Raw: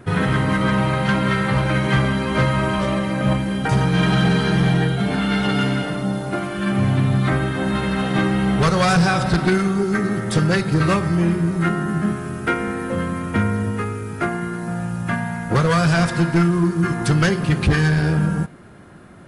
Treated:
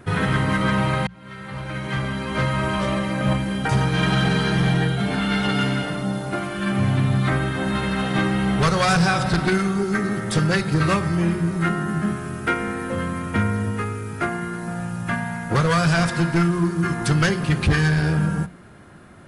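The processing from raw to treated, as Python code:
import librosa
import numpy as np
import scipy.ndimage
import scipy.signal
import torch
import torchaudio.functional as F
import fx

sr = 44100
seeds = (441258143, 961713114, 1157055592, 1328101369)

y = fx.edit(x, sr, fx.fade_in_span(start_s=1.07, length_s=1.79), tone=tone)
y = fx.peak_eq(y, sr, hz=340.0, db=-3.0, octaves=2.6)
y = fx.hum_notches(y, sr, base_hz=60, count=3)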